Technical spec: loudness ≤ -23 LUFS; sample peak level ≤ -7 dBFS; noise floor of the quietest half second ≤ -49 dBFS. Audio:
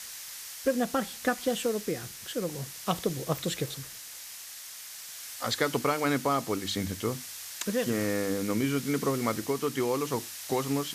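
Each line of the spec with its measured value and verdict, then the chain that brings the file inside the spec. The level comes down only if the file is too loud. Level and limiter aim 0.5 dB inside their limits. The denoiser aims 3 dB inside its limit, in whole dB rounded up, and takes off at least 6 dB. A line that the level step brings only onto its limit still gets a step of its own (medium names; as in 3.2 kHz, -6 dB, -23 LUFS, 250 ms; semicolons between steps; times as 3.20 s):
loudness -31.0 LUFS: pass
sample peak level -12.5 dBFS: pass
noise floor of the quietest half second -44 dBFS: fail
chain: noise reduction 8 dB, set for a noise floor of -44 dBFS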